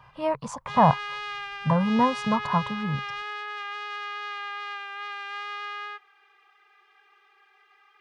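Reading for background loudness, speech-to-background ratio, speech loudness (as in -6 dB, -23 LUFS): -34.0 LUFS, 8.5 dB, -25.5 LUFS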